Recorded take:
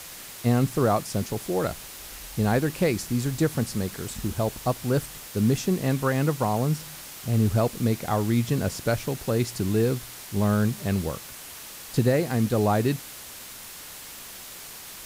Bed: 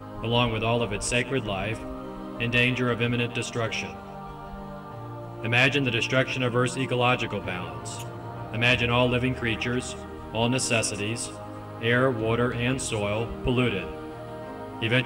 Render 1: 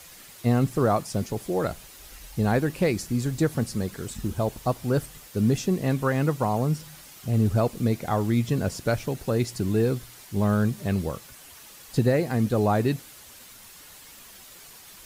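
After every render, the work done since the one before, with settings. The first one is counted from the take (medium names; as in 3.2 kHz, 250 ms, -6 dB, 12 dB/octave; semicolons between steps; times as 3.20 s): noise reduction 8 dB, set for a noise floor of -42 dBFS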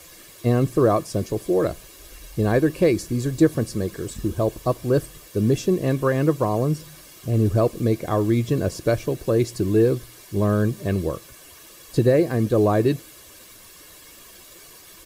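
peaking EQ 320 Hz +14.5 dB 0.55 oct; comb 1.8 ms, depth 51%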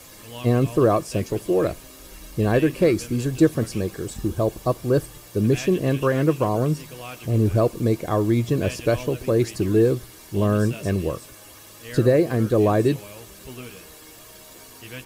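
add bed -15 dB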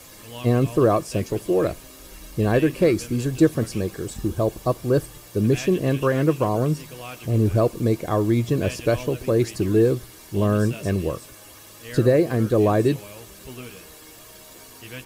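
no audible change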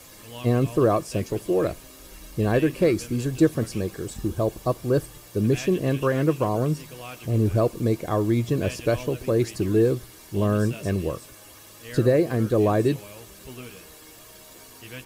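trim -2 dB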